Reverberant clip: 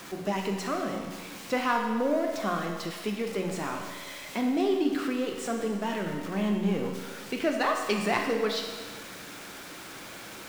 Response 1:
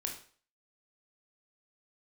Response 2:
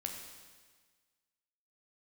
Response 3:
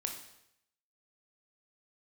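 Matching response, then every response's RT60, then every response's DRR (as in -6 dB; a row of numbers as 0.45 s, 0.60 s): 2; 0.45 s, 1.5 s, 0.80 s; 1.0 dB, 1.5 dB, 3.0 dB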